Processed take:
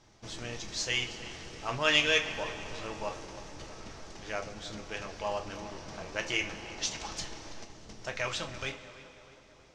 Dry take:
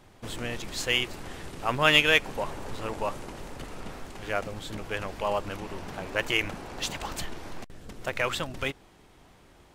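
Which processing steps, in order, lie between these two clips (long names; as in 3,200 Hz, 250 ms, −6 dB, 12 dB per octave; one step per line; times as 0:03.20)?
low-pass with resonance 5,800 Hz, resonance Q 3.6
tape delay 322 ms, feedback 66%, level −14 dB, low-pass 1,900 Hz
on a send at −3 dB: convolution reverb, pre-delay 3 ms
on the sum: level −8 dB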